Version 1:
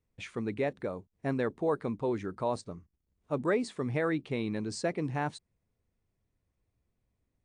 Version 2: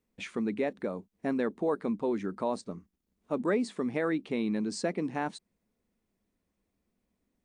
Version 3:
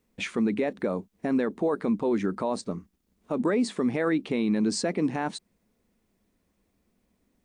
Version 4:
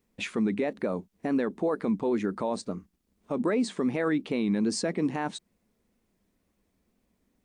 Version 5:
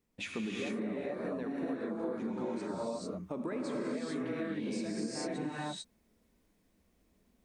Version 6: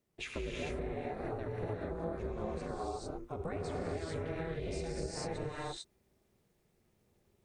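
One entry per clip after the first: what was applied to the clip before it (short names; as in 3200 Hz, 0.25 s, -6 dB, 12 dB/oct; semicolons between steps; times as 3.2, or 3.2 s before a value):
resonant low shelf 160 Hz -7 dB, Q 3; in parallel at -0.5 dB: compressor, threshold -36 dBFS, peak gain reduction 13 dB; on the sum: gain -3 dB
limiter -25 dBFS, peak gain reduction 7.5 dB; gain +8 dB
wow and flutter 73 cents; gain -1.5 dB
non-linear reverb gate 0.47 s rising, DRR -7 dB; compressor, threshold -28 dBFS, peak gain reduction 14 dB; gain -6 dB
ring modulator 160 Hz; gain +1 dB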